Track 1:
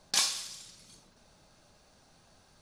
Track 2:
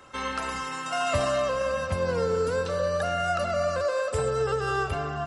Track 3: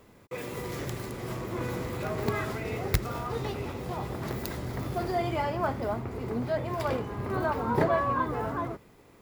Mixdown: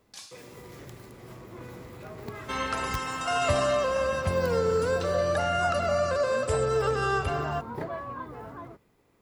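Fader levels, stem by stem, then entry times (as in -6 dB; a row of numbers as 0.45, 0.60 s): -18.0, +0.5, -10.0 dB; 0.00, 2.35, 0.00 s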